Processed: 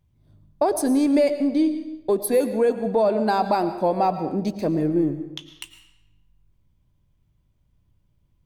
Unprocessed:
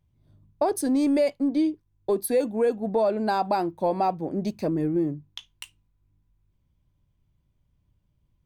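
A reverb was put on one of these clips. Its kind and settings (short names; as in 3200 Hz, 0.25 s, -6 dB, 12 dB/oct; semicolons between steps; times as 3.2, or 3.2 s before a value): digital reverb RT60 0.9 s, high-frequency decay 0.9×, pre-delay 70 ms, DRR 10 dB; gain +3 dB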